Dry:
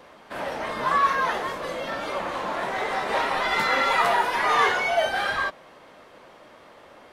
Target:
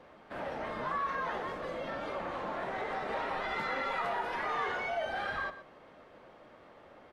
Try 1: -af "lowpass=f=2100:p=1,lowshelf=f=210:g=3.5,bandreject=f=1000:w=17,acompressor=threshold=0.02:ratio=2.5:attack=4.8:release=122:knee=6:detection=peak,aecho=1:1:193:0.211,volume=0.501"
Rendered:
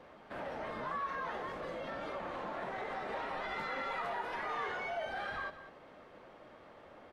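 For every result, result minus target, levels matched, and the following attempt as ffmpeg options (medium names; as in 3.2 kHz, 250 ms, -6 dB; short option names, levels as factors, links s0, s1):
echo 72 ms late; compression: peak gain reduction +4 dB
-af "lowpass=f=2100:p=1,lowshelf=f=210:g=3.5,bandreject=f=1000:w=17,acompressor=threshold=0.02:ratio=2.5:attack=4.8:release=122:knee=6:detection=peak,aecho=1:1:121:0.211,volume=0.501"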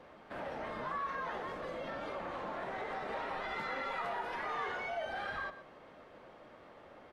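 compression: peak gain reduction +4 dB
-af "lowpass=f=2100:p=1,lowshelf=f=210:g=3.5,bandreject=f=1000:w=17,acompressor=threshold=0.0447:ratio=2.5:attack=4.8:release=122:knee=6:detection=peak,aecho=1:1:121:0.211,volume=0.501"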